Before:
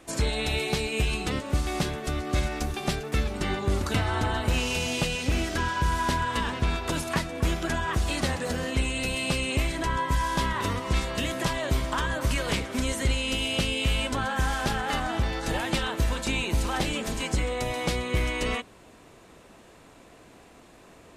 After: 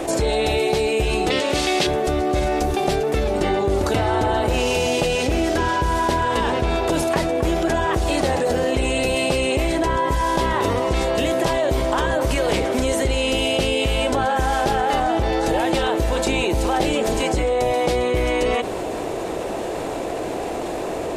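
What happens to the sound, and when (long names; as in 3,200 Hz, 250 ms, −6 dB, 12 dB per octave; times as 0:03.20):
0:01.30–0:01.87: meter weighting curve D
whole clip: flat-topped bell 520 Hz +9.5 dB; envelope flattener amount 70%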